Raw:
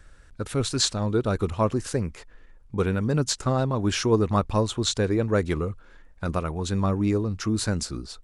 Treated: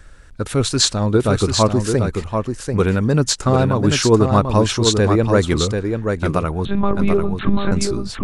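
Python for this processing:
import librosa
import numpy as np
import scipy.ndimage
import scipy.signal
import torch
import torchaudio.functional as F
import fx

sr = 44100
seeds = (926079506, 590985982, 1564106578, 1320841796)

y = fx.lpc_monotone(x, sr, seeds[0], pitch_hz=200.0, order=10, at=(6.65, 7.72))
y = y + 10.0 ** (-5.5 / 20.0) * np.pad(y, (int(739 * sr / 1000.0), 0))[:len(y)]
y = y * librosa.db_to_amplitude(7.5)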